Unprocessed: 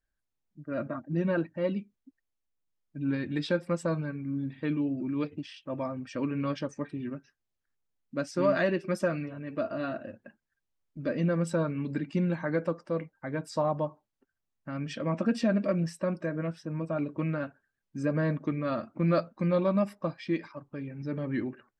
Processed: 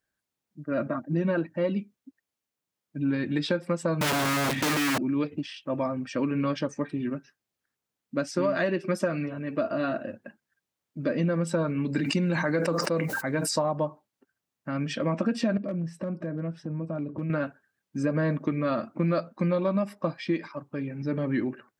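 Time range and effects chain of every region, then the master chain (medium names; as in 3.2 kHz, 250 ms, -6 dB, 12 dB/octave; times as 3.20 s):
4.01–4.98 s: compression 4:1, threshold -32 dBFS + waveshaping leveller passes 5 + integer overflow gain 27 dB
11.92–13.59 s: treble shelf 3.4 kHz +10.5 dB + band-stop 3.3 kHz, Q 11 + decay stretcher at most 41 dB/s
15.57–17.30 s: tilt EQ -3 dB/octave + compression 3:1, threshold -38 dBFS + hard clipper -30 dBFS
whole clip: high-pass 120 Hz; compression, threshold -28 dBFS; trim +6 dB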